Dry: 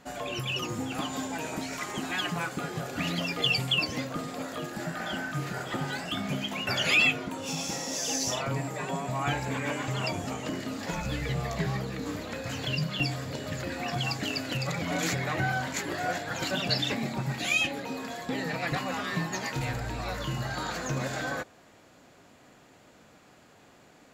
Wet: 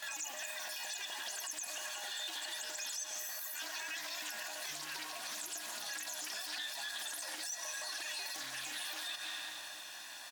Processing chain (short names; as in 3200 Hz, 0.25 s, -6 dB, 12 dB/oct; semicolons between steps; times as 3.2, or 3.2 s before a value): comb 2.7 ms, depth 79%; on a send at -13 dB: reverb RT60 4.9 s, pre-delay 0.166 s; on the sum: compressor 16:1, threshold -41 dBFS, peak gain reduction 25.5 dB; HPF 1200 Hz 6 dB/oct; high shelf 10000 Hz -3.5 dB; bit-crush 11-bit; diffused feedback echo 1.727 s, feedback 71%, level -13.5 dB; limiter -40 dBFS, peak gain reduction 7.5 dB; speed mistake 33 rpm record played at 78 rpm; Doppler distortion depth 0.2 ms; gain +8.5 dB